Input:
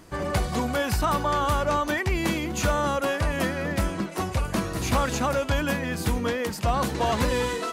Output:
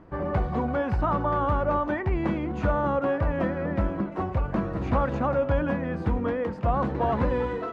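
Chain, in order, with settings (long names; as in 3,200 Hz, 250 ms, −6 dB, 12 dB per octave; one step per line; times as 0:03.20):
low-pass filter 1,300 Hz 12 dB per octave
convolution reverb RT60 0.95 s, pre-delay 3 ms, DRR 16.5 dB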